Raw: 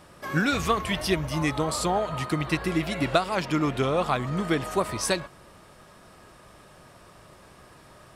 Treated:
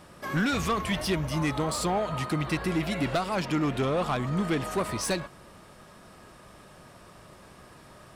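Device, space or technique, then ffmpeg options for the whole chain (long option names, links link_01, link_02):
saturation between pre-emphasis and de-emphasis: -af "highshelf=frequency=4800:gain=7,asoftclip=type=tanh:threshold=-21dB,equalizer=frequency=210:width_type=o:width=0.73:gain=3,highshelf=frequency=4800:gain=-7"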